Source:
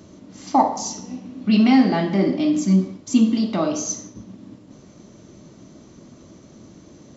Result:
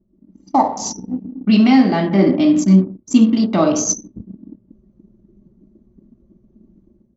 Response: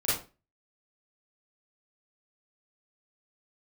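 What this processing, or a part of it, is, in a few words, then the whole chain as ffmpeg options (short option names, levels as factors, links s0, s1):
voice memo with heavy noise removal: -af "anlmdn=39.8,dynaudnorm=f=100:g=5:m=3.76,volume=0.891"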